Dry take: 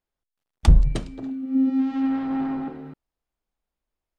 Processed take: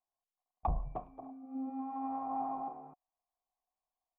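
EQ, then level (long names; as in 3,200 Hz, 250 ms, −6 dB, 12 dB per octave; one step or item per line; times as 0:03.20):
formant resonators in series a
+7.0 dB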